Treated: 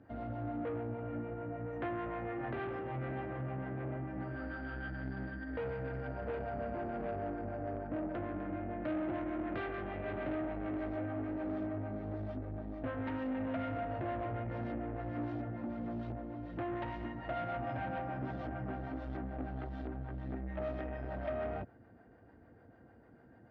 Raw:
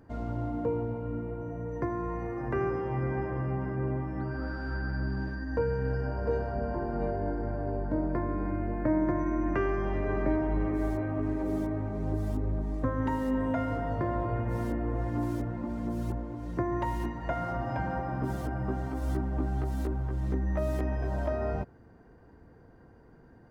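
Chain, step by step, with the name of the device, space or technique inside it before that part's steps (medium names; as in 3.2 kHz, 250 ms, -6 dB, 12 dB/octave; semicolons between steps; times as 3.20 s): guitar amplifier with harmonic tremolo (harmonic tremolo 6.7 Hz, depth 50%, crossover 470 Hz; saturation -32.5 dBFS, distortion -11 dB; cabinet simulation 94–3500 Hz, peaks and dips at 160 Hz -9 dB, 410 Hz -6 dB, 670 Hz +3 dB, 1 kHz -8 dB); 0.98–2.52 s: peaking EQ 2 kHz +4.5 dB 2.9 oct; trim +1 dB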